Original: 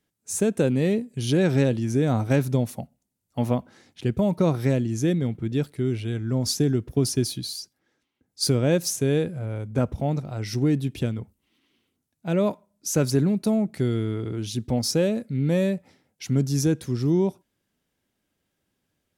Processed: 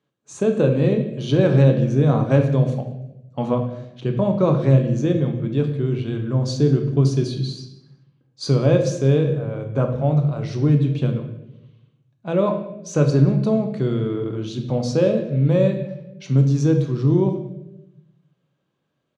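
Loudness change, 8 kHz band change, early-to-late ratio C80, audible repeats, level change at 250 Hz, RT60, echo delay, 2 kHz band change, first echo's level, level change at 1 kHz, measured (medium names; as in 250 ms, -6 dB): +4.5 dB, -8.5 dB, 10.0 dB, 1, +3.0 dB, 0.90 s, 186 ms, +0.5 dB, -22.0 dB, +4.5 dB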